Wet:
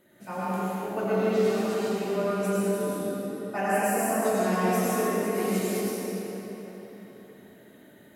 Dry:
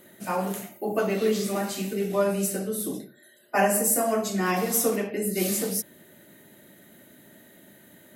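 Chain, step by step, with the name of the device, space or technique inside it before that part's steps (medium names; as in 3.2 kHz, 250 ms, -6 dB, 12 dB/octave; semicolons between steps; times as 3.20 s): swimming-pool hall (reverberation RT60 4.1 s, pre-delay 82 ms, DRR -8 dB; treble shelf 5.2 kHz -8 dB); trim -8.5 dB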